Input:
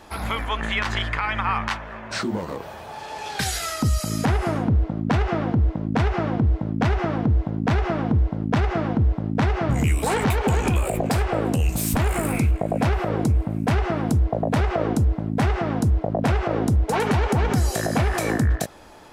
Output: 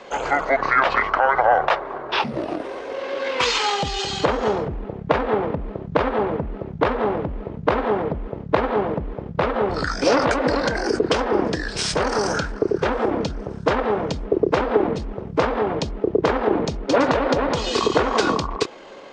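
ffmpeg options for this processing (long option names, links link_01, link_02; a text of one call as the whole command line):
ffmpeg -i in.wav -filter_complex "[0:a]asetrate=27781,aresample=44100,atempo=1.5874,acrossover=split=290 6100:gain=0.1 1 0.1[link_01][link_02][link_03];[link_01][link_02][link_03]amix=inputs=3:normalize=0,volume=8.5dB" out.wav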